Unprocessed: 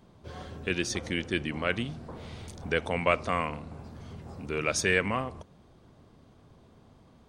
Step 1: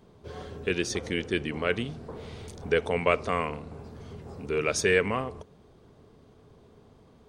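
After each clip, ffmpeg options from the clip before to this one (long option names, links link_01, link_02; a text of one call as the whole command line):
ffmpeg -i in.wav -af "equalizer=frequency=430:width_type=o:width=0.28:gain=9.5" out.wav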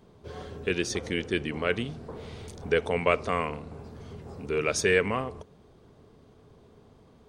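ffmpeg -i in.wav -af anull out.wav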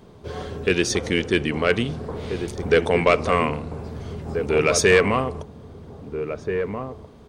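ffmpeg -i in.wav -filter_complex "[0:a]asoftclip=type=tanh:threshold=-14.5dB,asplit=2[link_01][link_02];[link_02]adelay=1633,volume=-7dB,highshelf=frequency=4000:gain=-36.7[link_03];[link_01][link_03]amix=inputs=2:normalize=0,volume=8.5dB" out.wav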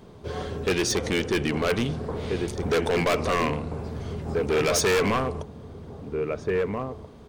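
ffmpeg -i in.wav -af "volume=19.5dB,asoftclip=hard,volume=-19.5dB" out.wav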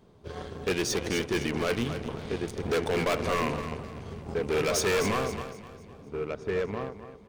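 ffmpeg -i in.wav -filter_complex "[0:a]asplit=2[link_01][link_02];[link_02]aecho=0:1:256|512|768|1024|1280:0.355|0.156|0.0687|0.0302|0.0133[link_03];[link_01][link_03]amix=inputs=2:normalize=0,aeval=exprs='0.168*(cos(1*acos(clip(val(0)/0.168,-1,1)))-cos(1*PI/2))+0.0119*(cos(7*acos(clip(val(0)/0.168,-1,1)))-cos(7*PI/2))':channel_layout=same,volume=-4.5dB" out.wav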